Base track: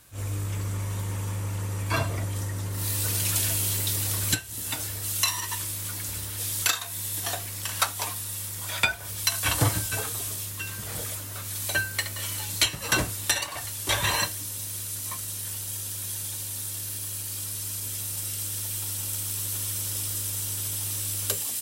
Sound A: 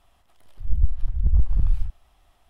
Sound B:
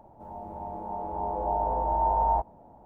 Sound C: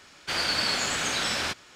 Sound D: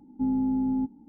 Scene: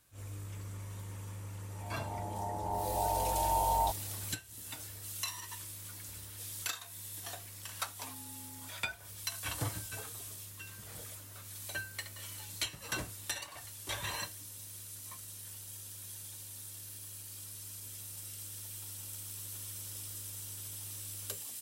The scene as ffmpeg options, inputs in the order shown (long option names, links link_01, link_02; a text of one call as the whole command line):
ffmpeg -i bed.wav -i cue0.wav -i cue1.wav -i cue2.wav -i cue3.wav -filter_complex "[0:a]volume=-13.5dB[link_01];[2:a]dynaudnorm=framelen=240:gausssize=3:maxgain=13dB[link_02];[4:a]highpass=650[link_03];[link_02]atrim=end=2.85,asetpts=PTS-STARTPTS,volume=-17.5dB,afade=type=in:duration=0.004:curve=hsin,afade=type=out:start_time=2.846:duration=0.004:curve=hsin,adelay=1500[link_04];[link_03]atrim=end=1.08,asetpts=PTS-STARTPTS,volume=-14.5dB,afade=type=in:duration=0.004:curve=hsin,afade=type=out:start_time=1.076:duration=0.004:curve=hsin,adelay=7830[link_05];[link_01][link_04][link_05]amix=inputs=3:normalize=0" out.wav